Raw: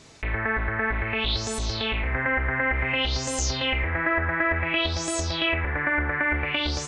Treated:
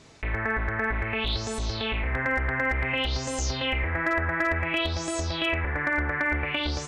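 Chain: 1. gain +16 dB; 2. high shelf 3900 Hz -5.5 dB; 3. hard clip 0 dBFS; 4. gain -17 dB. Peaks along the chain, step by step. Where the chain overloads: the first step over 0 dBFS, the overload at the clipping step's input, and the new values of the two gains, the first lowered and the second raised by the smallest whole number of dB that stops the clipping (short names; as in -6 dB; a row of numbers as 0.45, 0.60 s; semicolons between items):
+4.5, +4.0, 0.0, -17.0 dBFS; step 1, 4.0 dB; step 1 +12 dB, step 4 -13 dB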